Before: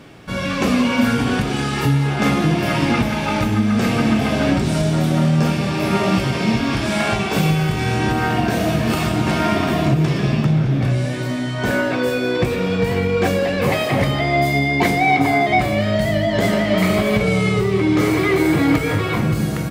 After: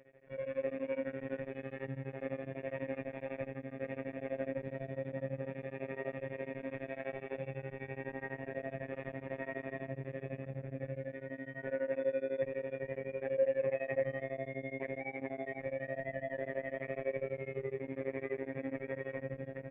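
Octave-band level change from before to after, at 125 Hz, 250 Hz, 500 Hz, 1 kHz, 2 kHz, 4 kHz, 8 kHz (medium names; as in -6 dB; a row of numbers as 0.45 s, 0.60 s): -27.5 dB, -26.5 dB, -15.5 dB, -28.5 dB, -23.0 dB, under -35 dB, under -40 dB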